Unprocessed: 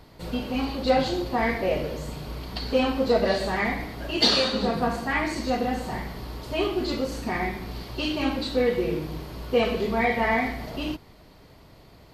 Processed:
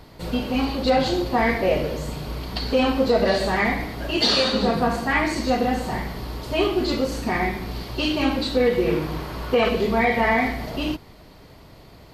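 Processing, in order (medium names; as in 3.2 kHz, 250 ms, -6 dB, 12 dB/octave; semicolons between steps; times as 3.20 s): 8.86–9.69 s: peaking EQ 1.3 kHz +7 dB 1.8 oct; loudness maximiser +13 dB; trim -8.5 dB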